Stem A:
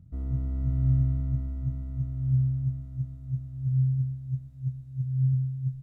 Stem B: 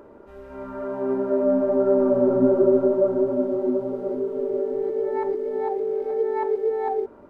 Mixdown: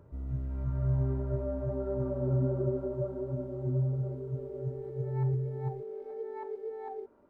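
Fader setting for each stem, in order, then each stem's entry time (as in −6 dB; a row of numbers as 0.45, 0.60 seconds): −5.5, −15.5 decibels; 0.00, 0.00 seconds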